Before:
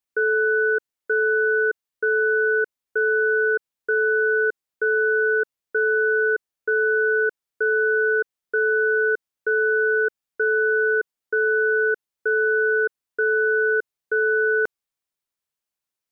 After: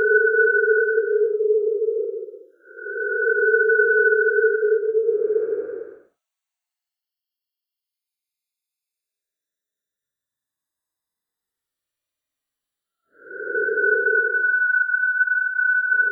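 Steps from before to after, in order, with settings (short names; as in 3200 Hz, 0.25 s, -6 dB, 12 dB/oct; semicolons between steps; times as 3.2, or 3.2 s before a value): random spectral dropouts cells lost 37%; Paulstretch 26×, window 0.05 s, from 1.5; gain +3 dB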